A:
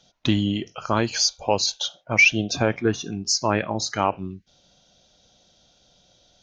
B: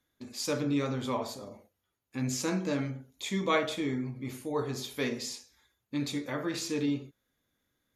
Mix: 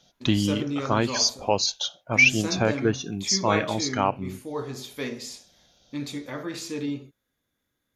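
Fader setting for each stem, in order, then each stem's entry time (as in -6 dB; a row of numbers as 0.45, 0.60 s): -1.5, 0.0 dB; 0.00, 0.00 s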